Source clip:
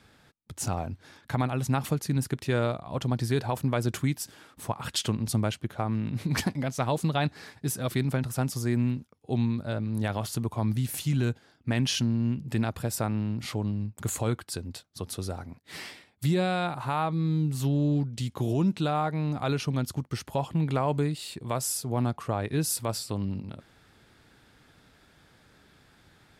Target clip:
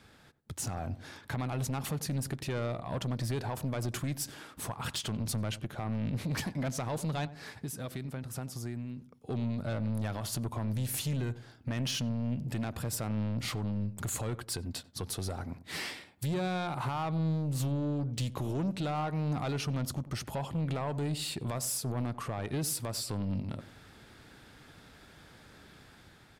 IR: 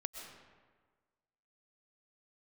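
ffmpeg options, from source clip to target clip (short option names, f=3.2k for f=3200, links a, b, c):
-filter_complex "[0:a]asettb=1/sr,asplit=3[a][b][c];[a]atrim=end=7.254[d];[b]atrim=start=7.25:end=9.3,asetpts=PTS-STARTPTS,afade=t=in:d=0.004:c=qsin,afade=t=out:st=2.046:d=0.004:c=qsin,acompressor=threshold=-39dB:ratio=10[e];[c]atrim=start=9.296[f];[d][e]acrossfade=d=0.004:c1=hsin:c2=qsin[g];[g][f]acrossfade=d=0.004:c1=qsin:c2=hsin,alimiter=level_in=1dB:limit=-24dB:level=0:latency=1:release=205,volume=-1dB,dynaudnorm=f=170:g=7:m=4dB,asoftclip=type=tanh:threshold=-28dB,asplit=2[h][i];[i]adelay=93,lowpass=f=870:p=1,volume=-14dB,asplit=2[j][k];[k]adelay=93,lowpass=f=870:p=1,volume=0.39,asplit=2[l][m];[m]adelay=93,lowpass=f=870:p=1,volume=0.39,asplit=2[n][o];[o]adelay=93,lowpass=f=870:p=1,volume=0.39[p];[h][j][l][n][p]amix=inputs=5:normalize=0"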